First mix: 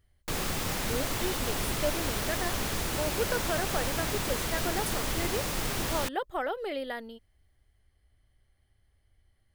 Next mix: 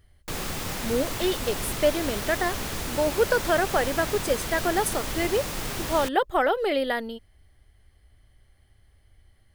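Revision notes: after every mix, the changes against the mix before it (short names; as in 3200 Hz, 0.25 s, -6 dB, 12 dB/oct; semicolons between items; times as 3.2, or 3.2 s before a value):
speech +9.5 dB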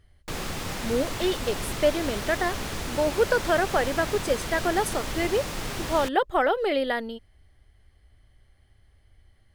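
master: add high shelf 11000 Hz -10.5 dB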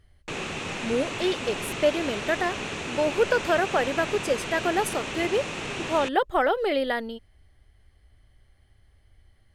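background: add speaker cabinet 120–7800 Hz, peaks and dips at 400 Hz +4 dB, 2600 Hz +9 dB, 4900 Hz -8 dB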